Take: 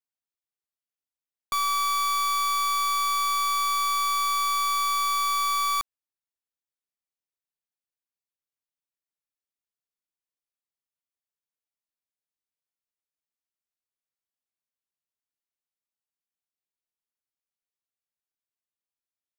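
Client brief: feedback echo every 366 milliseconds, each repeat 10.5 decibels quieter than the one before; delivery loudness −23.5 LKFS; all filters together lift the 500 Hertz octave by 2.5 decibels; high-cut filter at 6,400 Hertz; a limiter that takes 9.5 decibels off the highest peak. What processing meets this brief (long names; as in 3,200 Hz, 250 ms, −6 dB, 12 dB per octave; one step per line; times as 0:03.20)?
low-pass filter 6,400 Hz
parametric band 500 Hz +3.5 dB
brickwall limiter −32 dBFS
repeating echo 366 ms, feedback 30%, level −10.5 dB
level +8.5 dB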